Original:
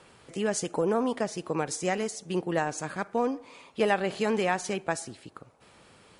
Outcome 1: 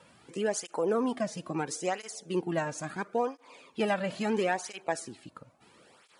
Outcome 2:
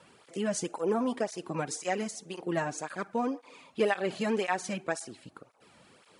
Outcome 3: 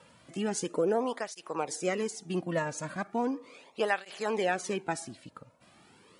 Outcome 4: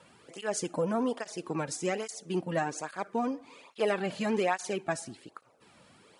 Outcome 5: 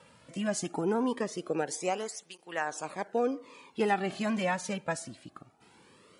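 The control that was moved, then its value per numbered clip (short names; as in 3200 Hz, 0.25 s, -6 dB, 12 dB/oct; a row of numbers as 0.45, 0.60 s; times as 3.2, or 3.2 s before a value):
tape flanging out of phase, nulls at: 0.74, 1.9, 0.37, 1.2, 0.21 Hz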